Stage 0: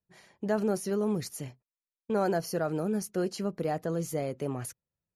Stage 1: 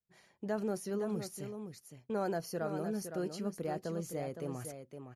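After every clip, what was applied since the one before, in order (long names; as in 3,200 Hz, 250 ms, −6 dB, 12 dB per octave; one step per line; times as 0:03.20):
single-tap delay 513 ms −8 dB
level −7 dB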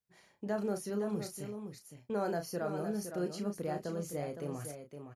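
double-tracking delay 34 ms −7.5 dB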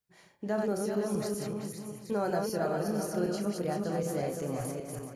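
feedback delay that plays each chunk backwards 192 ms, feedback 47%, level −3 dB
level +3 dB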